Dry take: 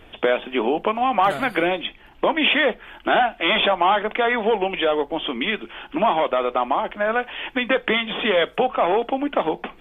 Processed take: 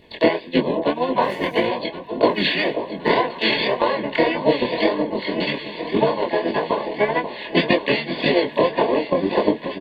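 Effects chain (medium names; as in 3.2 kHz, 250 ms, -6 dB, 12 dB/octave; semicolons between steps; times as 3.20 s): harmony voices -7 st -1 dB, +3 st -15 dB, +5 st -1 dB; comb of notches 790 Hz; transient shaper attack +11 dB, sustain -1 dB; chorus 1.8 Hz, delay 19 ms, depth 6.6 ms; Butterworth band-stop 1.3 kHz, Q 2.6; on a send: echo whose repeats swap between lows and highs 535 ms, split 1 kHz, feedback 76%, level -9 dB; on the sum: trim -3.5 dB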